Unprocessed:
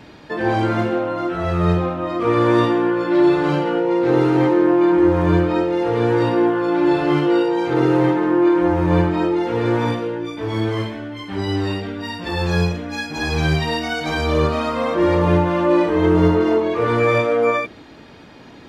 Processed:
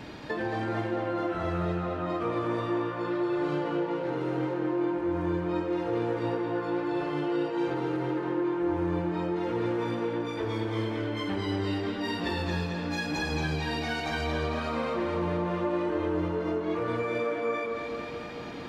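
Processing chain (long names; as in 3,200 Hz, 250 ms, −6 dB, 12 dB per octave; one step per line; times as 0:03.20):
downward compressor, threshold −30 dBFS, peak gain reduction 18.5 dB
tape delay 222 ms, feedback 76%, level −4 dB, low-pass 5,600 Hz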